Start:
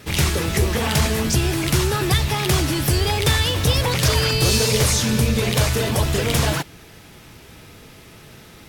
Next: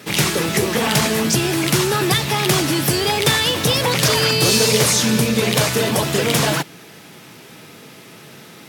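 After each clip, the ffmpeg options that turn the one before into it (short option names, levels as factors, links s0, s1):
-af "highpass=f=140:w=0.5412,highpass=f=140:w=1.3066,volume=1.58"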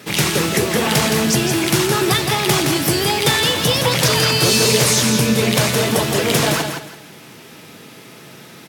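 -af "aecho=1:1:167|334|501:0.501|0.125|0.0313"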